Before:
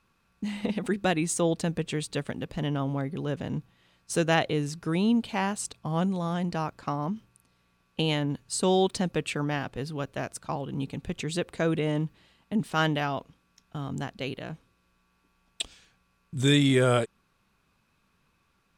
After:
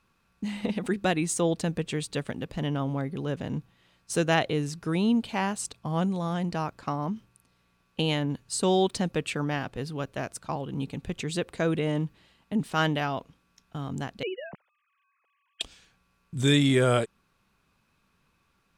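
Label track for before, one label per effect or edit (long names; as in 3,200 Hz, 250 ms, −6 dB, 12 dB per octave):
14.230000	15.610000	three sine waves on the formant tracks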